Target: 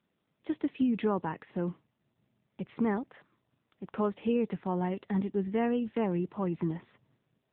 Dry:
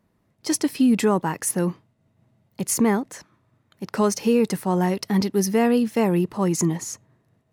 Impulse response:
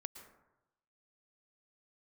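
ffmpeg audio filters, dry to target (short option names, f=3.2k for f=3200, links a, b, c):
-af "equalizer=f=70:w=1.4:g=-10,volume=-8.5dB" -ar 8000 -c:a libopencore_amrnb -b:a 7950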